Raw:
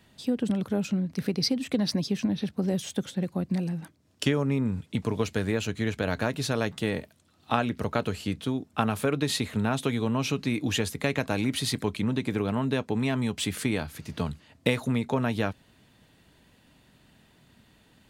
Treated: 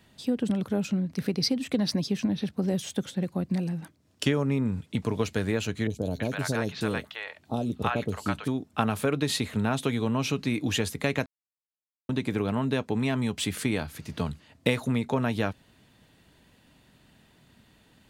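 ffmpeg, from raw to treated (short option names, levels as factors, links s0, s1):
-filter_complex "[0:a]asettb=1/sr,asplit=3[s0][s1][s2];[s0]atrim=end=5.874[s3];[s1]atrim=start=5.87:end=8.48,asetpts=PTS-STARTPTS,afade=t=in:d=0.004:c=qsin,afade=t=out:st=2.606:d=0.004:c=qsin,acrossover=split=710|4300[s4][s5][s6];[s6]adelay=30[s7];[s5]adelay=330[s8];[s4][s8][s7]amix=inputs=3:normalize=0,atrim=end_sample=115101[s9];[s2]atrim=start=8.476[s10];[s3][s9]acrossfade=d=0.004:c1=hsin:c2=qsin[s11];[s11][s10]acrossfade=d=0.004:c1=qsin:c2=hsin,asplit=3[s12][s13][s14];[s12]atrim=end=11.26,asetpts=PTS-STARTPTS,afade=t=out:st=11.256:d=0.004:c=hsin[s15];[s13]atrim=start=11.26:end=12.09,asetpts=PTS-STARTPTS,volume=0[s16];[s14]atrim=start=12.09,asetpts=PTS-STARTPTS,afade=t=in:d=0.004:c=hsin[s17];[s15][s16][s17]concat=n=3:v=0:a=1"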